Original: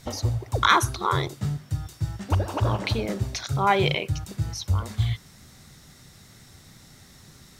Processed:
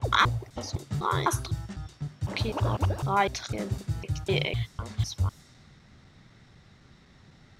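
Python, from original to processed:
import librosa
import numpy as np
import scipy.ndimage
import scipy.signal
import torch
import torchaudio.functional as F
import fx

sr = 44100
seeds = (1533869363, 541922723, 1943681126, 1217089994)

y = fx.block_reorder(x, sr, ms=252.0, group=3)
y = fx.env_lowpass(y, sr, base_hz=2900.0, full_db=-23.0)
y = y * 10.0 ** (-3.5 / 20.0)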